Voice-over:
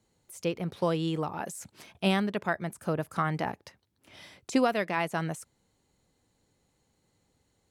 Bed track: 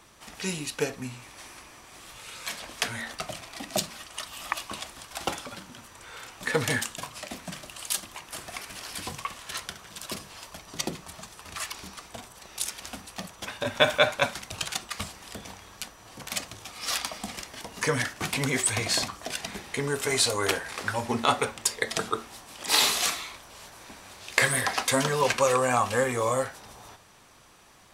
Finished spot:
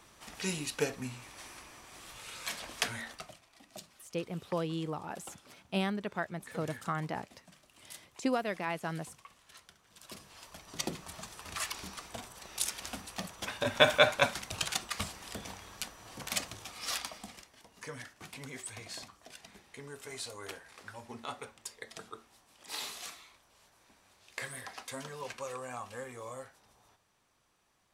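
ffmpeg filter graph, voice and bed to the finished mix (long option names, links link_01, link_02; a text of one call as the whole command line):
ffmpeg -i stem1.wav -i stem2.wav -filter_complex "[0:a]adelay=3700,volume=-6dB[link_01];[1:a]volume=15dB,afade=type=out:start_time=2.82:duration=0.57:silence=0.141254,afade=type=in:start_time=9.84:duration=1.44:silence=0.11885,afade=type=out:start_time=16.41:duration=1.1:silence=0.158489[link_02];[link_01][link_02]amix=inputs=2:normalize=0" out.wav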